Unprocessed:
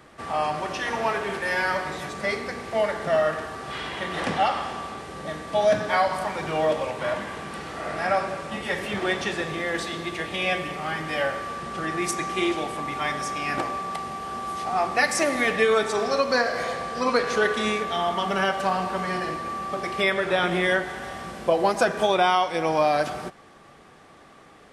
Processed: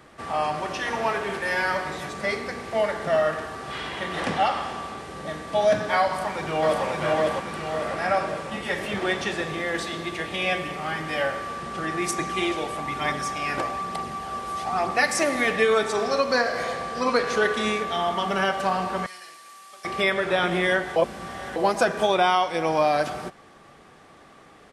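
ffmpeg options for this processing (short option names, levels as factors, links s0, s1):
-filter_complex "[0:a]asplit=2[s0][s1];[s1]afade=t=in:st=6.07:d=0.01,afade=t=out:st=6.84:d=0.01,aecho=0:1:550|1100|1650|2200|2750|3300|3850:0.891251|0.445625|0.222813|0.111406|0.0557032|0.0278516|0.0139258[s2];[s0][s2]amix=inputs=2:normalize=0,asettb=1/sr,asplit=3[s3][s4][s5];[s3]atrim=end=12.184[s6];[s4]atrim=start=12.18:end=14.91,asetpts=PTS-STARTPTS,afade=t=in:d=0.004:c=qsin,afade=t=out:st=2.726:d=0.004:c=qsin,aphaser=in_gain=1:out_gain=1:delay=2.2:decay=0.32:speed=1.1:type=triangular[s7];[s5]atrim=start=14.906[s8];[s6][s7]acrossfade=d=0.004:c1=hsin:c2=qsin[s9];[s9][s8]acrossfade=d=0.004:c1=qsin:c2=hsin,asettb=1/sr,asplit=3[s10][s11][s12];[s10]atrim=end=19.064[s13];[s11]atrim=start=19.06:end=19.85,asetpts=PTS-STARTPTS,afade=t=in:d=0.004:c=qsin,afade=t=out:st=0.786:d=0.004:c=qsin,aderivative[s14];[s12]atrim=start=19.846[s15];[s13][s14]acrossfade=d=0.004:c1=hsin:c2=qsin[s16];[s16][s15]acrossfade=d=0.004:c1=qsin:c2=hsin,asplit=3[s17][s18][s19];[s17]atrim=end=20.962[s20];[s18]atrim=start=20.958:end=21.562,asetpts=PTS-STARTPTS,areverse[s21];[s19]atrim=start=21.558[s22];[s20][s21]acrossfade=d=0.004:c1=hsin:c2=hsin[s23];[s23][s22]acrossfade=d=0.004:c1=hsin:c2=hsin"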